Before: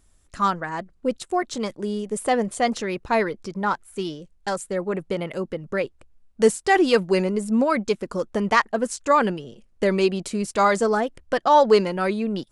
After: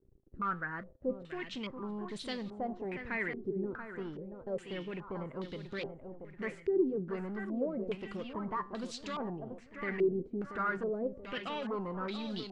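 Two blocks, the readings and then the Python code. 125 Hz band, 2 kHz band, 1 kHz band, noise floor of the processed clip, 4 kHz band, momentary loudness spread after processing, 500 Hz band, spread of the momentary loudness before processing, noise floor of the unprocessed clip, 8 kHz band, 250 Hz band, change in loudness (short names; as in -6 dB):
-11.5 dB, -13.0 dB, -18.5 dB, -56 dBFS, -13.0 dB, 9 LU, -14.5 dB, 11 LU, -59 dBFS, under -20 dB, -12.5 dB, -14.5 dB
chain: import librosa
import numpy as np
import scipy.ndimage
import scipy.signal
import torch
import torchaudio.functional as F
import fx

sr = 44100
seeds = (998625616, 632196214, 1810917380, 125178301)

p1 = fx.peak_eq(x, sr, hz=790.0, db=-14.5, octaves=1.4)
p2 = fx.over_compress(p1, sr, threshold_db=-30.0, ratio=-1.0)
p3 = p1 + (p2 * 10.0 ** (-2.0 / 20.0))
p4 = fx.mod_noise(p3, sr, seeds[0], snr_db=30)
p5 = fx.quant_dither(p4, sr, seeds[1], bits=8, dither='none')
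p6 = 10.0 ** (-21.0 / 20.0) * np.tanh(p5 / 10.0 ** (-21.0 / 20.0))
p7 = fx.comb_fb(p6, sr, f0_hz=130.0, decay_s=0.38, harmonics='all', damping=0.0, mix_pct=50)
p8 = p7 + fx.echo_feedback(p7, sr, ms=682, feedback_pct=41, wet_db=-8.5, dry=0)
p9 = fx.filter_held_lowpass(p8, sr, hz=2.4, low_hz=390.0, high_hz=3900.0)
y = p9 * 10.0 ** (-8.5 / 20.0)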